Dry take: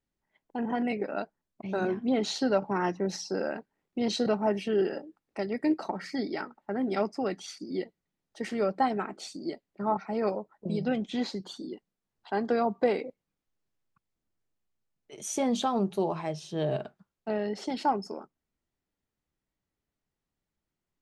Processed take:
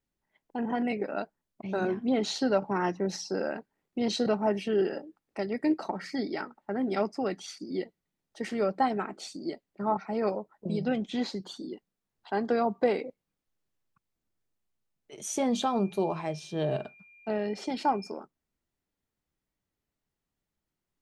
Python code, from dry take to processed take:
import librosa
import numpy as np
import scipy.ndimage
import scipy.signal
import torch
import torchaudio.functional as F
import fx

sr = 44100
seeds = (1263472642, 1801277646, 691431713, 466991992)

y = fx.dmg_tone(x, sr, hz=2400.0, level_db=-54.0, at=(15.52, 18.09), fade=0.02)